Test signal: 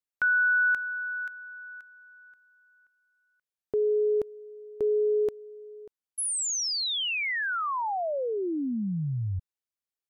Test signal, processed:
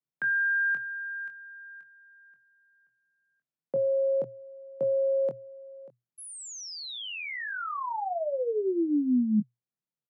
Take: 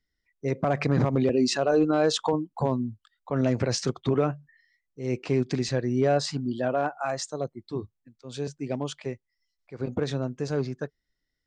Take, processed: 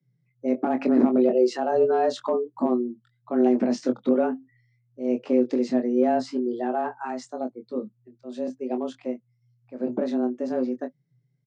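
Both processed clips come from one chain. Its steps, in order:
spectral tilt −3 dB per octave
double-tracking delay 23 ms −7 dB
frequency shifter +120 Hz
level −4.5 dB

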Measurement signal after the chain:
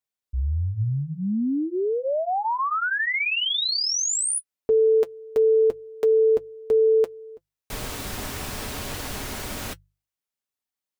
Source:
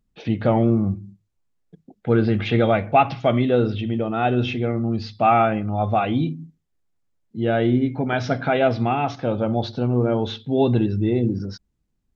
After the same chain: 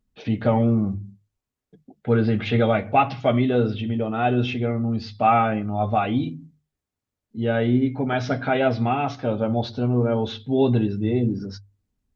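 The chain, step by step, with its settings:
mains-hum notches 50/100/150 Hz
notch comb filter 170 Hz

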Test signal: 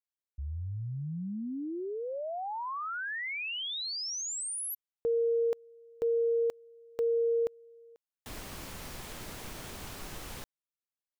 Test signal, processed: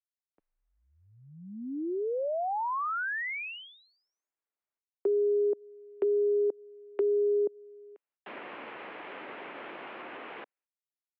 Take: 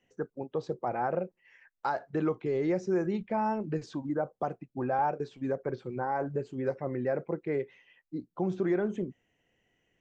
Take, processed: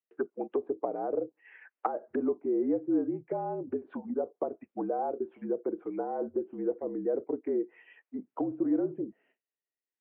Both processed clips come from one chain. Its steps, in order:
treble cut that deepens with the level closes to 460 Hz, closed at −29.5 dBFS
noise gate with hold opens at −59 dBFS, closes at −65 dBFS, hold 164 ms, range −33 dB
single-sideband voice off tune −53 Hz 360–2,800 Hz
level +5.5 dB

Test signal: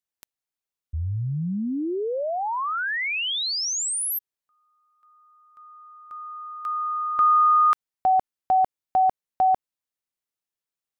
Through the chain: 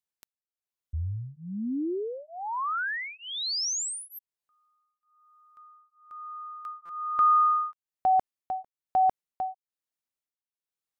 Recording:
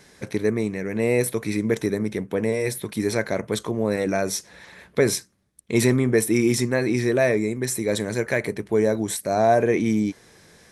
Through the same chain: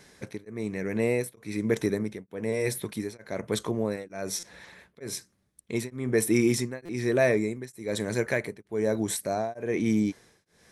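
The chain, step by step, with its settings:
buffer that repeats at 0:04.39/0:06.85, samples 256, times 6
tremolo along a rectified sine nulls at 1.1 Hz
level −2.5 dB

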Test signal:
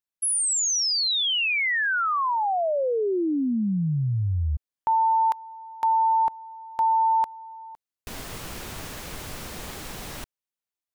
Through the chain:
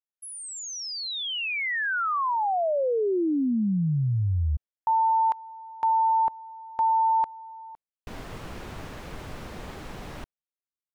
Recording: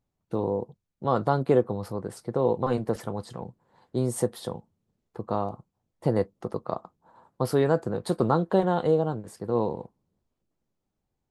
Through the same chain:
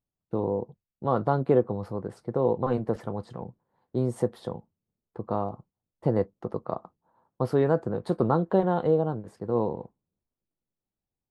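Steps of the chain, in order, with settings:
noise gate with hold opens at −42 dBFS, closes at −51 dBFS, hold 19 ms, range −10 dB
low-pass filter 1,600 Hz 6 dB per octave

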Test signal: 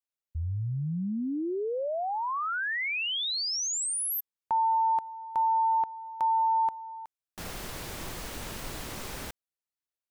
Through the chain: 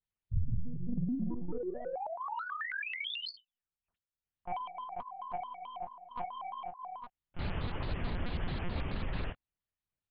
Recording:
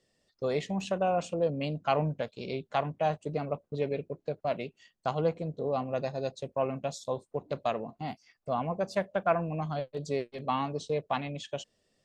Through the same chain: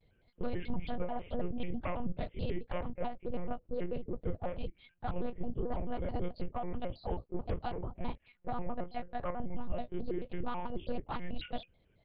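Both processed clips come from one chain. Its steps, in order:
random phases in long frames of 50 ms
downward compressor 10 to 1, threshold −35 dBFS
soft clipping −29.5 dBFS
one-pitch LPC vocoder at 8 kHz 210 Hz
low-shelf EQ 230 Hz +11 dB
pitch modulation by a square or saw wave square 4.6 Hz, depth 250 cents

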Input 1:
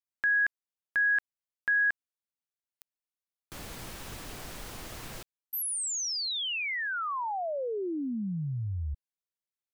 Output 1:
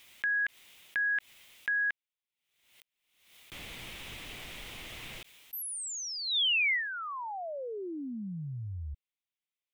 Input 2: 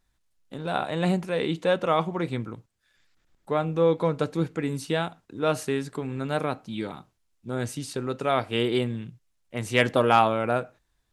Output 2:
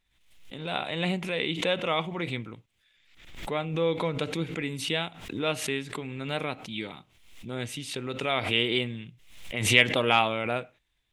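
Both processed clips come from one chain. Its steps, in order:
flat-topped bell 2,700 Hz +11 dB 1.1 octaves
background raised ahead of every attack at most 73 dB per second
level −5.5 dB

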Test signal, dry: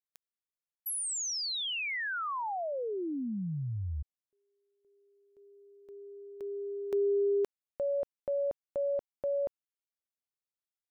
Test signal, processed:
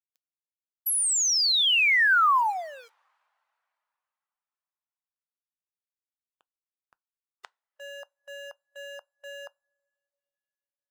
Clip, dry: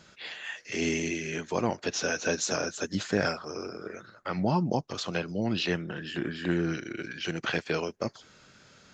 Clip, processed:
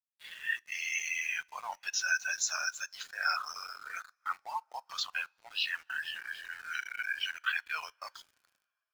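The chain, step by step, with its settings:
mu-law and A-law mismatch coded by A
reversed playback
downward compressor 5 to 1, threshold −43 dBFS
reversed playback
high-pass filter 950 Hz 24 dB per octave
in parallel at −6.5 dB: soft clipping −37.5 dBFS
on the sum: automatic gain control gain up to 12.5 dB
gate on every frequency bin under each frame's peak −20 dB strong
bit reduction 7 bits
coupled-rooms reverb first 0.31 s, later 4.8 s, from −18 dB, DRR 17.5 dB
every bin expanded away from the loudest bin 1.5 to 1

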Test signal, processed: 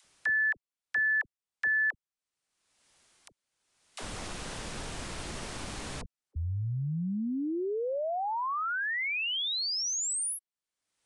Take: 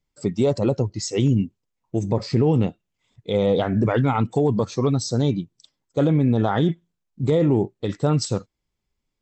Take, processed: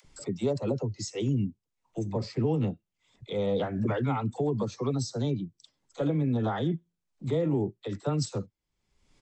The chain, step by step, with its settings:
upward compression, threshold −27 dBFS
downsampling to 22,050 Hz
all-pass dispersion lows, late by 47 ms, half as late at 490 Hz
level −8.5 dB

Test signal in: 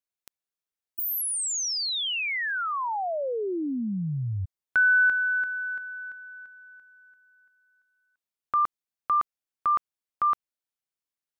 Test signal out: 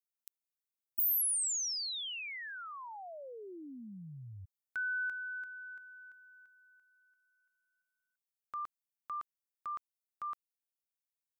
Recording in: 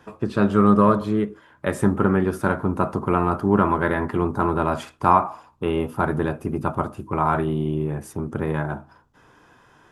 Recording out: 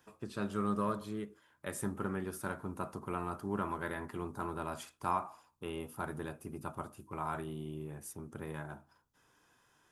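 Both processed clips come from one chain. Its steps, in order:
first-order pre-emphasis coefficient 0.8
level −4.5 dB

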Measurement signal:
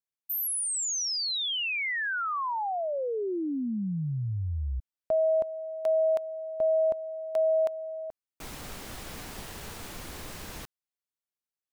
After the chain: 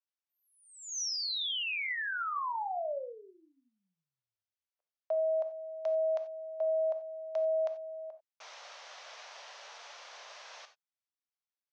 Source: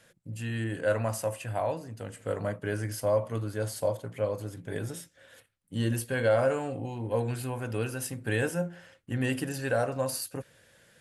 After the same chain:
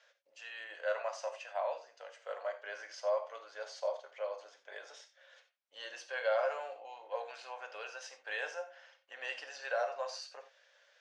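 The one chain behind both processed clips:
Chebyshev band-pass filter 560–6,100 Hz, order 4
reverb whose tail is shaped and stops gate 110 ms flat, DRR 8 dB
level −4.5 dB

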